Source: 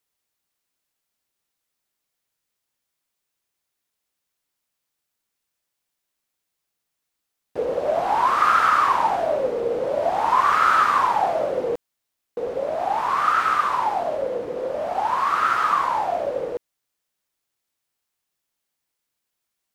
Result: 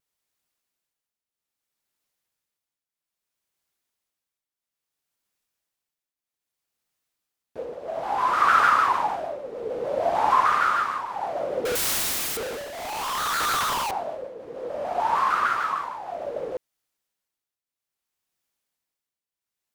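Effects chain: 11.65–13.91 s: one-bit comparator; tremolo triangle 0.61 Hz, depth 80%; vibrato with a chosen wave saw down 6.6 Hz, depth 160 cents

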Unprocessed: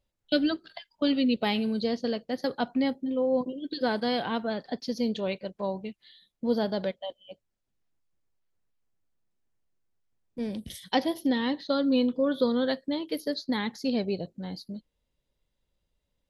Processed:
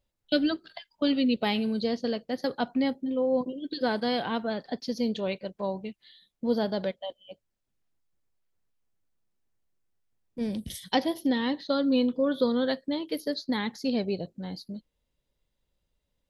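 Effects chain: 10.41–10.96 s: tone controls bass +4 dB, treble +4 dB

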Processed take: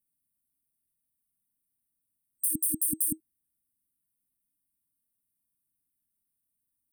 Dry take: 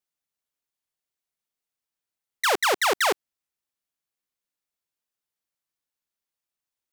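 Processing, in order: FFT band-reject 320–8300 Hz; trim +9 dB

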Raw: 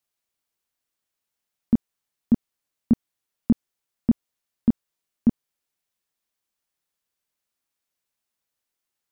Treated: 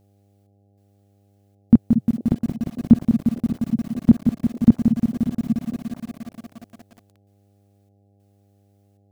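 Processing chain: dynamic bell 120 Hz, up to +7 dB, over -37 dBFS, Q 1.4; on a send: repeats whose band climbs or falls 226 ms, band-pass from 170 Hz, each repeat 1.4 oct, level -8 dB; on the sum: trance gate "xxx..xxxxx.x" 97 bpm -12 dB; mains buzz 100 Hz, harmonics 8, -65 dBFS -6 dB/octave; bit-crushed delay 176 ms, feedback 80%, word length 8-bit, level -6.5 dB; trim +6 dB

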